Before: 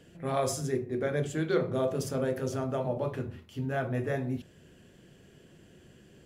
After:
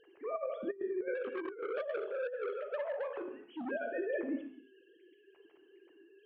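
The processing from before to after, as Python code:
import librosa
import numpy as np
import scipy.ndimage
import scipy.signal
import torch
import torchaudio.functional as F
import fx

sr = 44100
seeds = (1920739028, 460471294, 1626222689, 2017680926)

y = fx.sine_speech(x, sr)
y = fx.rev_gated(y, sr, seeds[0], gate_ms=320, shape='falling', drr_db=6.0)
y = fx.over_compress(y, sr, threshold_db=-30.0, ratio=-0.5)
y = fx.transformer_sat(y, sr, knee_hz=1000.0, at=(1.15, 3.71))
y = y * librosa.db_to_amplitude(-4.5)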